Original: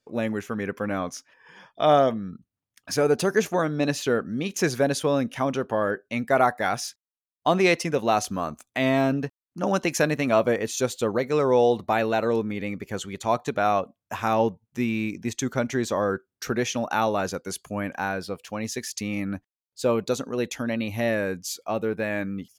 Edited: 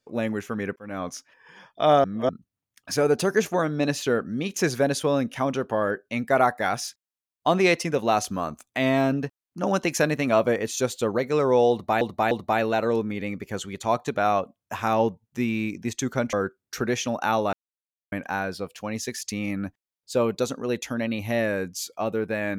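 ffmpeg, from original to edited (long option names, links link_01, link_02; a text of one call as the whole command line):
ffmpeg -i in.wav -filter_complex "[0:a]asplit=9[link_01][link_02][link_03][link_04][link_05][link_06][link_07][link_08][link_09];[link_01]atrim=end=0.76,asetpts=PTS-STARTPTS,afade=type=out:start_time=0.756:duration=0.004:curve=hsin[link_10];[link_02]atrim=start=0.76:end=2.042,asetpts=PTS-STARTPTS,afade=type=in:duration=0.33[link_11];[link_03]atrim=start=2.038:end=2.292,asetpts=PTS-STARTPTS,areverse[link_12];[link_04]atrim=start=2.288:end=12.012[link_13];[link_05]atrim=start=11.708:end=12.012[link_14];[link_06]atrim=start=11.708:end=15.732[link_15];[link_07]atrim=start=16.018:end=17.22,asetpts=PTS-STARTPTS,afade=type=out:start_time=1.198:duration=0.004:curve=hsin[link_16];[link_08]atrim=start=17.22:end=17.81,asetpts=PTS-STARTPTS,volume=0[link_17];[link_09]atrim=start=17.81,asetpts=PTS-STARTPTS,afade=type=in:duration=0.004:curve=hsin[link_18];[link_10][link_11]concat=n=2:v=0:a=1[link_19];[link_19][link_12]acrossfade=duration=0.004:curve1=hsin:curve2=hsin[link_20];[link_20][link_13]acrossfade=duration=0.004:curve1=hsin:curve2=hsin[link_21];[link_21][link_14]acrossfade=duration=0.004:curve1=hsin:curve2=hsin[link_22];[link_22][link_15]acrossfade=duration=0.004:curve1=hsin:curve2=hsin[link_23];[link_16][link_17][link_18]concat=n=3:v=0:a=1[link_24];[link_23][link_24]acrossfade=duration=0.004:curve1=hsin:curve2=hsin" out.wav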